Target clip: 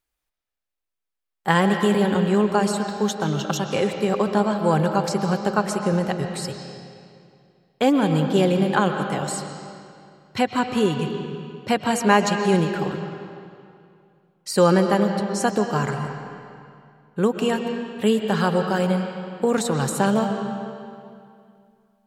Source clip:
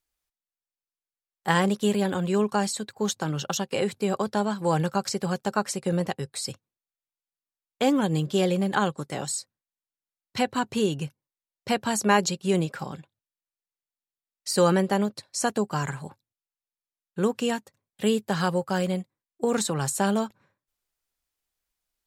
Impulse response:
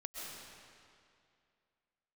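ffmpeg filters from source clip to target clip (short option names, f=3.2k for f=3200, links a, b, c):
-filter_complex "[0:a]asplit=2[a][b];[b]lowpass=4.9k[c];[1:a]atrim=start_sample=2205,highshelf=f=10k:g=-12[d];[c][d]afir=irnorm=-1:irlink=0,volume=1dB[e];[a][e]amix=inputs=2:normalize=0"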